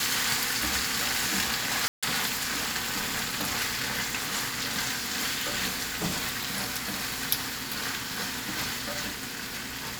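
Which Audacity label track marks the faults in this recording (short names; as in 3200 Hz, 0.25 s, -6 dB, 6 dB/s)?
1.880000	2.030000	gap 0.146 s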